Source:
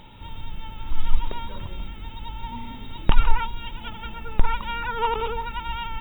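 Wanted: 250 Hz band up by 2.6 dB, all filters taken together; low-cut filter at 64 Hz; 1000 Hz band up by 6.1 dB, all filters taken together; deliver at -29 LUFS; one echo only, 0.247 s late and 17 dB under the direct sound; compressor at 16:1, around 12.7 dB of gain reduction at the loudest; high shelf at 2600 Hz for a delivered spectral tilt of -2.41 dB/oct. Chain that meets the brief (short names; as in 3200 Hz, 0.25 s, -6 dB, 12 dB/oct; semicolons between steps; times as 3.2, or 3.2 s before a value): HPF 64 Hz; bell 250 Hz +3 dB; bell 1000 Hz +6 dB; high shelf 2600 Hz +5 dB; compressor 16:1, threshold -26 dBFS; echo 0.247 s -17 dB; gain +3.5 dB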